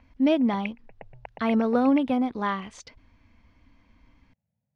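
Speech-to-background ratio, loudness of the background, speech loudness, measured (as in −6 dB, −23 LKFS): 18.5 dB, −43.5 LKFS, −25.0 LKFS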